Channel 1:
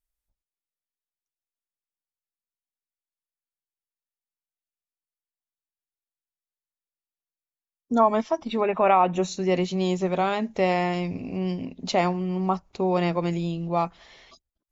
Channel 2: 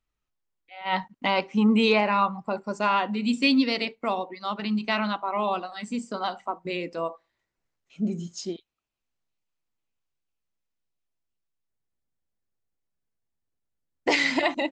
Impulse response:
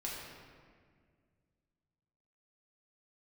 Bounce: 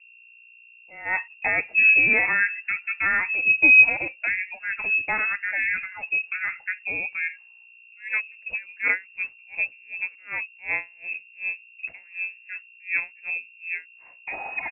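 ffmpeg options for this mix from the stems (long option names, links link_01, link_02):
-filter_complex "[0:a]aeval=exprs='val(0)*pow(10,-36*(0.5-0.5*cos(2*PI*2.7*n/s))/20)':channel_layout=same,volume=-1.5dB,asplit=2[link_01][link_02];[1:a]adelay=200,volume=0.5dB[link_03];[link_02]apad=whole_len=657535[link_04];[link_03][link_04]sidechaincompress=threshold=-49dB:ratio=4:attack=16:release=1290[link_05];[link_01][link_05]amix=inputs=2:normalize=0,equalizer=frequency=280:width_type=o:width=0.49:gain=8.5,aeval=exprs='val(0)+0.00316*(sin(2*PI*60*n/s)+sin(2*PI*2*60*n/s)/2+sin(2*PI*3*60*n/s)/3+sin(2*PI*4*60*n/s)/4+sin(2*PI*5*60*n/s)/5)':channel_layout=same,lowpass=frequency=2400:width_type=q:width=0.5098,lowpass=frequency=2400:width_type=q:width=0.6013,lowpass=frequency=2400:width_type=q:width=0.9,lowpass=frequency=2400:width_type=q:width=2.563,afreqshift=-2800"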